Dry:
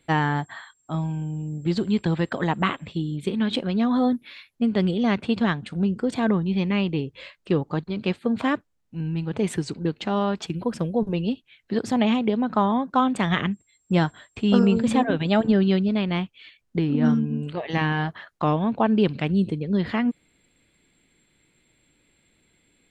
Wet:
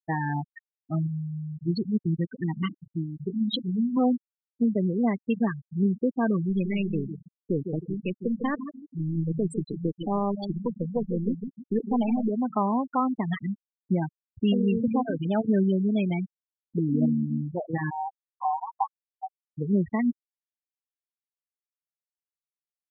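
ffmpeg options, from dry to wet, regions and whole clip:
-filter_complex "[0:a]asettb=1/sr,asplit=3[s0][s1][s2];[s0]atrim=end=1.074[s3];[s1]atrim=start=1.07:end=3.97,asetpts=PTS-STARTPTS,afade=t=in:d=0.004:c=qsin,afade=t=out:st=2.896:d=0.004:c=qsin,equalizer=f=840:w=0.6:g=-11.5,bandreject=f=50:t=h:w=6,bandreject=f=100:t=h:w=6,bandreject=f=150:t=h:w=6,bandreject=f=200:t=h:w=6,bandreject=f=250:t=h:w=6,bandreject=f=300:t=h:w=6[s4];[s2]atrim=start=3.966[s5];[s3][s4]acrossfade=d=0.004:c1=hsin:c2=qsin[s6];[s6][s5]acrossfade=d=0.004:c1=qsin:c2=hsin,asettb=1/sr,asplit=3[s7][s8][s9];[s7]atrim=end=6.494[s10];[s8]atrim=start=6.49:end=12.3,asetpts=PTS-STARTPTS,afade=t=in:d=0.004:c=qsin,afade=t=out:st=5.806:d=0.004:c=qsin,aeval=exprs='if(lt(val(0),0),0.708*val(0),val(0))':c=same,aecho=1:1:154|308|462|616|770|924:0.398|0.191|0.0917|0.044|0.0211|0.0101,atrim=end_sample=256221[s11];[s9]atrim=start=12.296[s12];[s10][s11]acrossfade=d=0.004:c1=hsin:c2=qsin[s13];[s13][s12]acrossfade=d=0.004:c1=qsin:c2=hsin,asettb=1/sr,asplit=3[s14][s15][s16];[s14]atrim=end=17.904[s17];[s15]atrim=start=17.9:end=19.58,asetpts=PTS-STARTPTS,afade=t=in:d=0.004:c=qsin,afade=t=out:st=1.676:d=0.004:c=qsin,asuperpass=centerf=900:order=12:qfactor=2.4,aecho=1:1:5.2:0.66,atrim=end_sample=74088[s18];[s16]atrim=start=19.576[s19];[s17][s18]acrossfade=d=0.004:c1=hsin:c2=qsin[s20];[s20][s19]acrossfade=d=0.004:c1=qsin:c2=hsin,alimiter=limit=0.178:level=0:latency=1:release=366,highshelf=f=4300:g=9,afftfilt=real='re*gte(hypot(re,im),0.126)':imag='im*gte(hypot(re,im),0.126)':win_size=1024:overlap=0.75"

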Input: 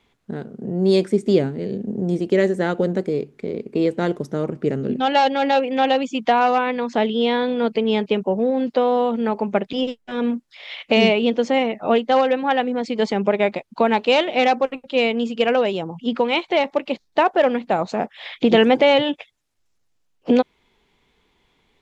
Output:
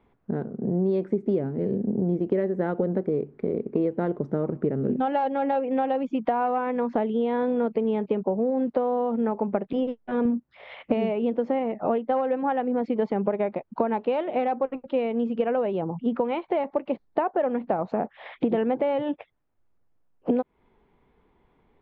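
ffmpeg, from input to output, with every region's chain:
-filter_complex "[0:a]asettb=1/sr,asplit=3[s0][s1][s2];[s0]atrim=end=10.254[s3];[s1]atrim=start=10.25:end=10.94,asetpts=PTS-STARTPTS,afade=t=in:d=0.004:c=qsin,afade=t=out:st=0.686:d=0.004:c=qsin,highpass=46,lowshelf=f=220:g=11[s4];[s2]atrim=start=10.936[s5];[s3][s4]acrossfade=d=0.004:c1=hsin:c2=qsin[s6];[s6][s5]acrossfade=d=0.004:c1=qsin:c2=hsin,acompressor=threshold=0.0708:ratio=6,lowpass=1200,volume=1.26"

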